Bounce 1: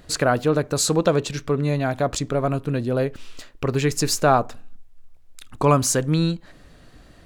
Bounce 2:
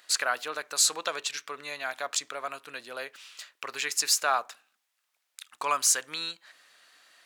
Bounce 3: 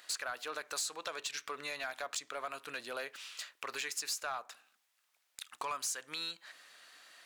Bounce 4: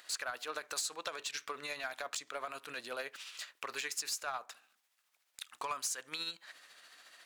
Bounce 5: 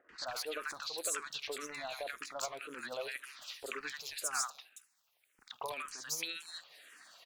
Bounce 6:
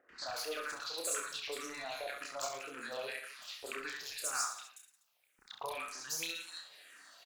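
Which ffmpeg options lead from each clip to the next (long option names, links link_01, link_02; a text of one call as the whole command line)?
ffmpeg -i in.wav -af "highpass=1400" out.wav
ffmpeg -i in.wav -af "acompressor=threshold=-36dB:ratio=4,asoftclip=type=tanh:threshold=-29.5dB,volume=1dB" out.wav
ffmpeg -i in.wav -af "tremolo=f=14:d=0.41,volume=1.5dB" out.wav
ffmpeg -i in.wav -filter_complex "[0:a]acrossover=split=1100|4500[link_01][link_02][link_03];[link_02]adelay=90[link_04];[link_03]adelay=270[link_05];[link_01][link_04][link_05]amix=inputs=3:normalize=0,asplit=2[link_06][link_07];[link_07]afreqshift=-1.9[link_08];[link_06][link_08]amix=inputs=2:normalize=1,volume=5dB" out.wav
ffmpeg -i in.wav -af "aecho=1:1:30|67.5|114.4|173|246.2:0.631|0.398|0.251|0.158|0.1,volume=-2dB" out.wav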